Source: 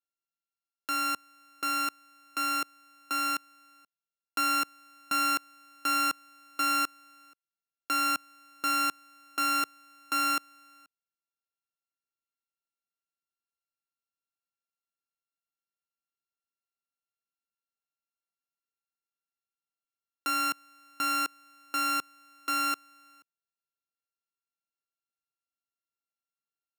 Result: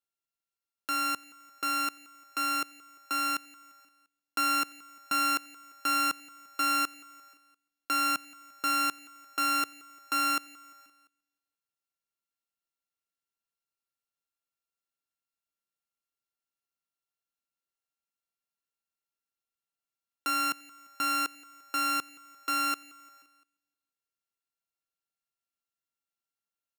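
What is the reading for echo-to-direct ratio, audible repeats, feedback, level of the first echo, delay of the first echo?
−20.5 dB, 3, 55%, −22.0 dB, 173 ms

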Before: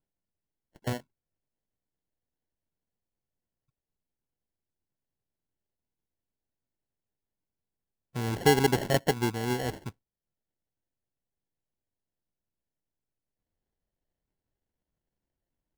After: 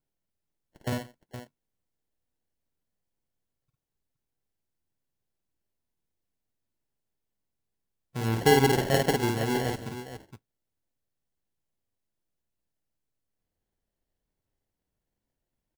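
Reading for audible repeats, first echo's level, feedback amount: 3, −3.0 dB, repeats not evenly spaced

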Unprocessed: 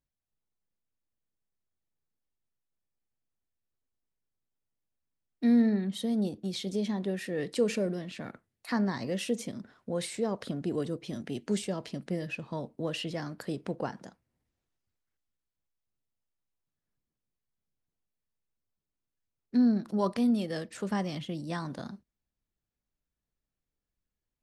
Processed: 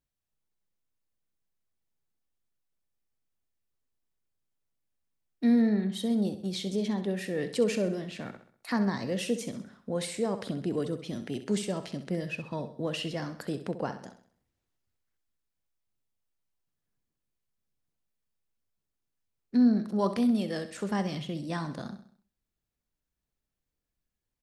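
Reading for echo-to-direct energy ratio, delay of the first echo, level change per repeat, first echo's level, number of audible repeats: −10.5 dB, 65 ms, −7.0 dB, −11.5 dB, 4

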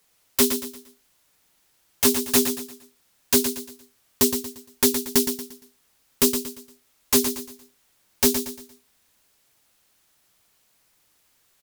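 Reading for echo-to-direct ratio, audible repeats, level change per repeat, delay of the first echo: −7.5 dB, 4, −9.0 dB, 116 ms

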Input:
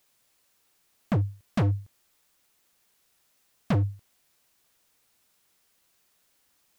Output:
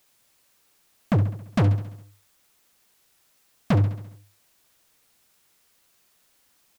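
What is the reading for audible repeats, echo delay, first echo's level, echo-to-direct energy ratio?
5, 68 ms, −12.0 dB, −10.5 dB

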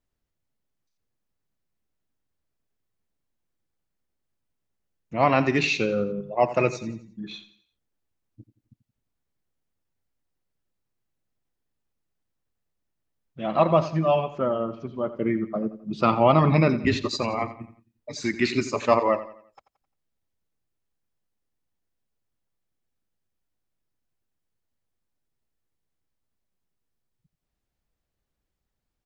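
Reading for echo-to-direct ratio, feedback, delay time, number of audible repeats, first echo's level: −13.0 dB, 40%, 87 ms, 3, −14.0 dB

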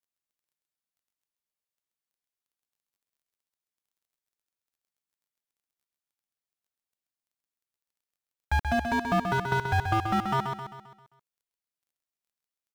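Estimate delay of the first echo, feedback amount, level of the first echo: 132 ms, 48%, −6.0 dB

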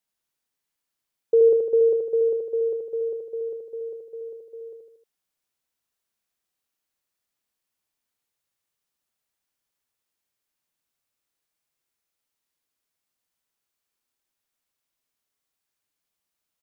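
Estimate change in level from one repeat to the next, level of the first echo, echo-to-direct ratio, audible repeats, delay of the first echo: −6.0 dB, −3.5 dB, −2.0 dB, 4, 77 ms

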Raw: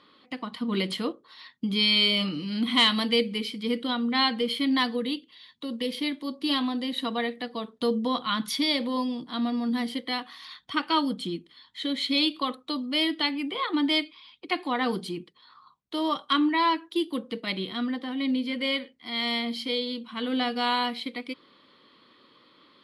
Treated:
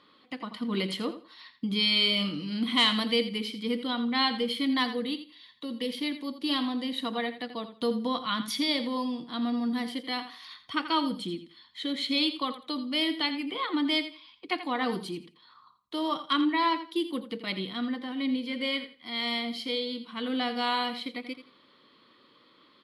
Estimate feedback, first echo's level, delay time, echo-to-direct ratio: 21%, −12.0 dB, 84 ms, −12.0 dB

